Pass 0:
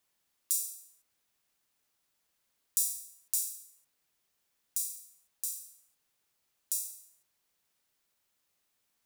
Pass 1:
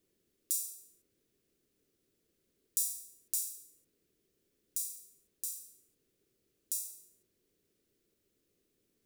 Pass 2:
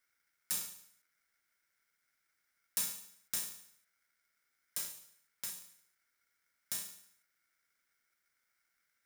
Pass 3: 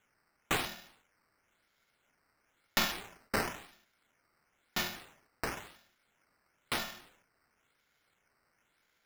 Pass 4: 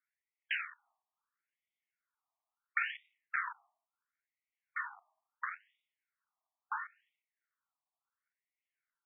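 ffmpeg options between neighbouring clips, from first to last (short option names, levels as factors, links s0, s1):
-af "lowshelf=f=580:t=q:w=3:g=13,volume=0.708"
-af "aeval=exprs='val(0)*sgn(sin(2*PI*1800*n/s))':c=same,volume=0.75"
-af "acrusher=samples=9:mix=1:aa=0.000001:lfo=1:lforange=9:lforate=0.98,volume=1.78"
-af "afwtdn=0.00794,tiltshelf=f=970:g=4,afftfilt=real='re*between(b*sr/1024,850*pow(2700/850,0.5+0.5*sin(2*PI*0.73*pts/sr))/1.41,850*pow(2700/850,0.5+0.5*sin(2*PI*0.73*pts/sr))*1.41)':imag='im*between(b*sr/1024,850*pow(2700/850,0.5+0.5*sin(2*PI*0.73*pts/sr))/1.41,850*pow(2700/850,0.5+0.5*sin(2*PI*0.73*pts/sr))*1.41)':win_size=1024:overlap=0.75,volume=1.5"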